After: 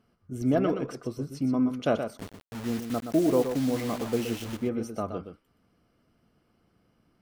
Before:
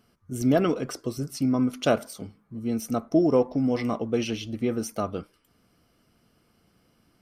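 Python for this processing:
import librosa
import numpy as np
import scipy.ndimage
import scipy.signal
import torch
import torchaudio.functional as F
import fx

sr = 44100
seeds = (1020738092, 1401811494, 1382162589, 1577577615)

y = fx.high_shelf(x, sr, hz=3300.0, db=-10.5)
y = fx.quant_dither(y, sr, seeds[0], bits=6, dither='none', at=(2.17, 4.57))
y = y + 10.0 ** (-8.0 / 20.0) * np.pad(y, (int(122 * sr / 1000.0), 0))[:len(y)]
y = y * librosa.db_to_amplitude(-3.0)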